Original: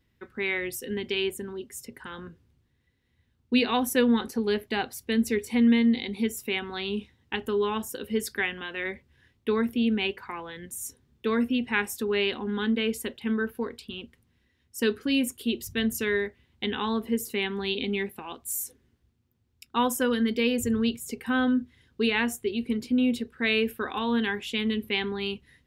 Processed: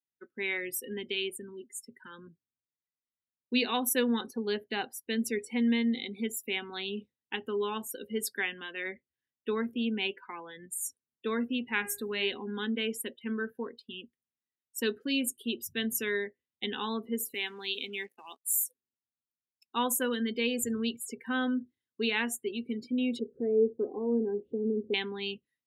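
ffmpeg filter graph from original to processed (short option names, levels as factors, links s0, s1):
-filter_complex "[0:a]asettb=1/sr,asplit=3[s0][s1][s2];[s0]atrim=end=1.124[s3];[s1]atrim=start=1.12:end=2.27,asetpts=PTS-STARTPTS,afade=t=in:d=0.004:c=qsin,afade=t=out:st=1.146:d=0.004:c=qsin,equalizer=f=610:t=o:w=2.6:g=-2.5,acompressor=mode=upward:threshold=0.00708:ratio=2.5:attack=3.2:release=140:knee=2.83:detection=peak[s4];[s2]atrim=start=2.266[s5];[s3][s4]acrossfade=d=0.004:c1=hsin:c2=qsin[s6];[s6][s5]acrossfade=d=0.004:c1=qsin:c2=hsin,asettb=1/sr,asplit=3[s7][s8][s9];[s7]atrim=end=11.774[s10];[s8]atrim=start=11.77:end=12.41,asetpts=PTS-STARTPTS,afade=t=in:d=0.004:c=qsin,afade=t=out:st=0.636:d=0.004:c=qsin,bandreject=f=407.4:t=h:w=4,bandreject=f=814.8:t=h:w=4,bandreject=f=1222.2:t=h:w=4,bandreject=f=1629.6:t=h:w=4,bandreject=f=2037:t=h:w=4,bandreject=f=2444.4:t=h:w=4,bandreject=f=2851.8:t=h:w=4,bandreject=f=3259.2:t=h:w=4,bandreject=f=3666.6:t=h:w=4,bandreject=f=4074:t=h:w=4,bandreject=f=4481.4:t=h:w=4,bandreject=f=4888.8:t=h:w=4,bandreject=f=5296.2:t=h:w=4,bandreject=f=5703.6:t=h:w=4,bandreject=f=6111:t=h:w=4,bandreject=f=6518.4:t=h:w=4,bandreject=f=6925.8:t=h:w=4,bandreject=f=7333.2:t=h:w=4,bandreject=f=7740.6:t=h:w=4,bandreject=f=8148:t=h:w=4,bandreject=f=8555.4:t=h:w=4,bandreject=f=8962.8:t=h:w=4,bandreject=f=9370.2:t=h:w=4,bandreject=f=9777.6:t=h:w=4,bandreject=f=10185:t=h:w=4,bandreject=f=10592.4:t=h:w=4,bandreject=f=10999.8:t=h:w=4,bandreject=f=11407.2:t=h:w=4,bandreject=f=11814.6:t=h:w=4,bandreject=f=12222:t=h:w=4,bandreject=f=12629.4:t=h:w=4,bandreject=f=13036.8:t=h:w=4,bandreject=f=13444.2:t=h:w=4,bandreject=f=13851.6:t=h:w=4,bandreject=f=14259:t=h:w=4,bandreject=f=14666.4:t=h:w=4,bandreject=f=15073.8:t=h:w=4,bandreject=f=15481.2:t=h:w=4,bandreject=f=15888.6:t=h:w=4,bandreject=f=16296:t=h:w=4,aeval=exprs='val(0)+0.00398*(sin(2*PI*50*n/s)+sin(2*PI*2*50*n/s)/2+sin(2*PI*3*50*n/s)/3+sin(2*PI*4*50*n/s)/4+sin(2*PI*5*50*n/s)/5)':c=same[s11];[s9]atrim=start=12.406[s12];[s10][s11]acrossfade=d=0.004:c1=hsin:c2=qsin[s13];[s13][s12]acrossfade=d=0.004:c1=qsin:c2=hsin,asettb=1/sr,asplit=3[s14][s15][s16];[s14]atrim=end=17.344[s17];[s15]atrim=start=17.34:end=18.63,asetpts=PTS-STARTPTS,afade=t=in:d=0.004:c=qsin,afade=t=out:st=1.286:d=0.004:c=qsin,highpass=f=700:p=1,aeval=exprs='val(0)+0.00141*(sin(2*PI*60*n/s)+sin(2*PI*2*60*n/s)/2+sin(2*PI*3*60*n/s)/3+sin(2*PI*4*60*n/s)/4+sin(2*PI*5*60*n/s)/5)':c=same,acrusher=bits=6:mix=0:aa=0.5[s18];[s16]atrim=start=18.626[s19];[s17][s18]acrossfade=d=0.004:c1=hsin:c2=qsin[s20];[s20][s19]acrossfade=d=0.004:c1=qsin:c2=hsin,asettb=1/sr,asplit=3[s21][s22][s23];[s21]atrim=end=23.194[s24];[s22]atrim=start=23.19:end=24.94,asetpts=PTS-STARTPTS,afade=t=in:d=0.004:c=qsin,afade=t=out:st=1.746:d=0.004:c=qsin,lowpass=f=430:t=q:w=2.9,acompressor=mode=upward:threshold=0.0316:ratio=2.5:attack=3.2:release=140:knee=2.83:detection=peak[s25];[s23]atrim=start=24.936[s26];[s24][s25]acrossfade=d=0.004:c1=hsin:c2=qsin[s27];[s27][s26]acrossfade=d=0.004:c1=qsin:c2=hsin,afftdn=nr=27:nf=-39,highpass=180,highshelf=f=4700:g=11,volume=0.531"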